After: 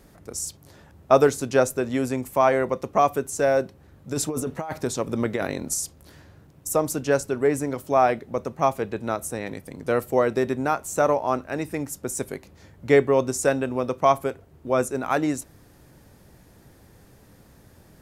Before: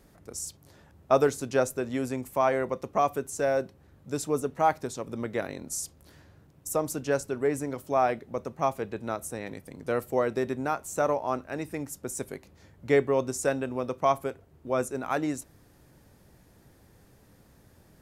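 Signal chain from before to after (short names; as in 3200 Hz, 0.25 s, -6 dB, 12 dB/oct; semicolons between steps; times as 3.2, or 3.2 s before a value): 4.11–5.74 negative-ratio compressor -31 dBFS, ratio -1; gain +5.5 dB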